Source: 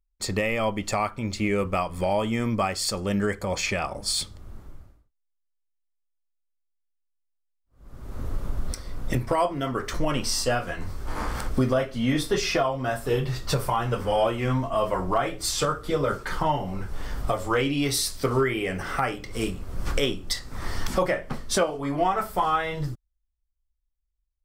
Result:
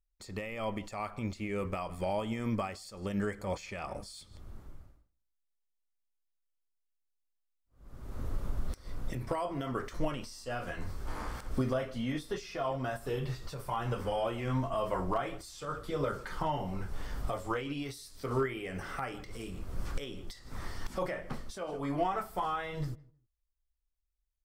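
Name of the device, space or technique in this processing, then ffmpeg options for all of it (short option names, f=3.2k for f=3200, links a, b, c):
de-esser from a sidechain: -filter_complex "[0:a]asplit=2[a][b];[b]adelay=156,lowpass=f=1.7k:p=1,volume=-22dB,asplit=2[c][d];[d]adelay=156,lowpass=f=1.7k:p=1,volume=0.2[e];[a][c][e]amix=inputs=3:normalize=0,asplit=2[f][g];[g]highpass=4.6k,apad=whole_len=1091769[h];[f][h]sidechaincompress=threshold=-48dB:ratio=3:attack=2.8:release=99,volume=-5.5dB"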